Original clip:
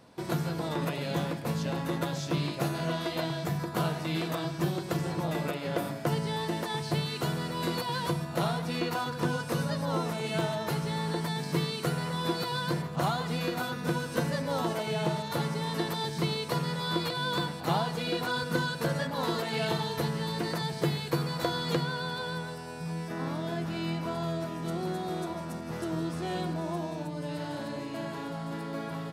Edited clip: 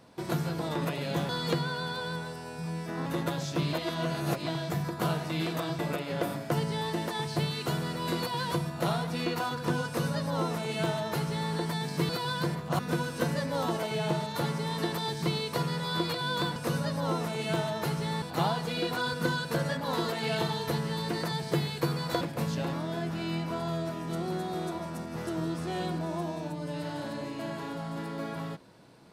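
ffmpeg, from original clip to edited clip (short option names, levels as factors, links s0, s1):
-filter_complex "[0:a]asplit=12[s0][s1][s2][s3][s4][s5][s6][s7][s8][s9][s10][s11];[s0]atrim=end=1.292[s12];[s1]atrim=start=21.508:end=23.282[s13];[s2]atrim=start=1.808:end=2.482[s14];[s3]atrim=start=2.478:end=3.222,asetpts=PTS-STARTPTS,areverse[s15];[s4]atrim=start=3.218:end=4.542[s16];[s5]atrim=start=5.338:end=11.642[s17];[s6]atrim=start=12.358:end=13.062[s18];[s7]atrim=start=13.748:end=17.522[s19];[s8]atrim=start=9.408:end=11.072[s20];[s9]atrim=start=17.518:end=21.512[s21];[s10]atrim=start=1.288:end=1.812[s22];[s11]atrim=start=23.278[s23];[s12][s13]acrossfade=d=0.004:c1=hsin:c2=hsin[s24];[s24][s14]acrossfade=d=0.004:c1=hsin:c2=hsin[s25];[s25][s15]acrossfade=d=0.004:c1=hsin:c2=hsin[s26];[s26][s16]acrossfade=d=0.004:c1=hsin:c2=hsin[s27];[s27][s17]acrossfade=d=0.004:c1=hsin:c2=hsin[s28];[s28][s18]acrossfade=d=0.004:c1=hsin:c2=hsin[s29];[s29][s19]acrossfade=d=0.004:c1=hsin:c2=hsin[s30];[s30][s20]acrossfade=d=0.004:c1=hsin:c2=hsin[s31];[s31][s21]acrossfade=d=0.004:c1=hsin:c2=hsin[s32];[s32][s22]acrossfade=d=0.004:c1=hsin:c2=hsin[s33];[s33][s23]acrossfade=d=0.004:c1=hsin:c2=hsin"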